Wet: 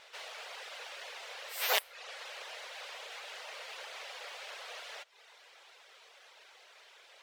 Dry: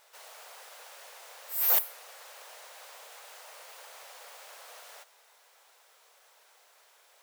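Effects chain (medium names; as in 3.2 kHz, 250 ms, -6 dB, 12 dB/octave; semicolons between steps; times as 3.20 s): RIAA curve playback; reverb removal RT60 0.61 s; frequency weighting D; trim +3.5 dB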